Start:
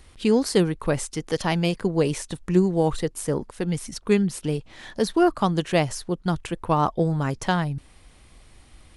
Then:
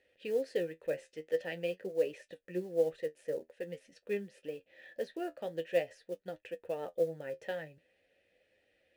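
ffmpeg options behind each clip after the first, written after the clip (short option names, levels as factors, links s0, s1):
-filter_complex "[0:a]asplit=3[s0][s1][s2];[s0]bandpass=f=530:t=q:w=8,volume=1[s3];[s1]bandpass=f=1840:t=q:w=8,volume=0.501[s4];[s2]bandpass=f=2480:t=q:w=8,volume=0.355[s5];[s3][s4][s5]amix=inputs=3:normalize=0,acrusher=bits=7:mode=log:mix=0:aa=0.000001,flanger=delay=9.6:depth=3.8:regen=50:speed=0.47:shape=triangular,volume=1.19"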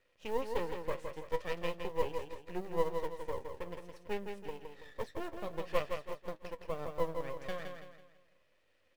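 -af "aeval=exprs='max(val(0),0)':c=same,aecho=1:1:165|330|495|660|825:0.501|0.195|0.0762|0.0297|0.0116,volume=1.19"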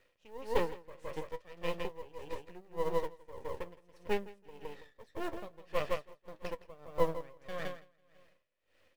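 -af "aeval=exprs='val(0)*pow(10,-21*(0.5-0.5*cos(2*PI*1.7*n/s))/20)':c=same,volume=1.88"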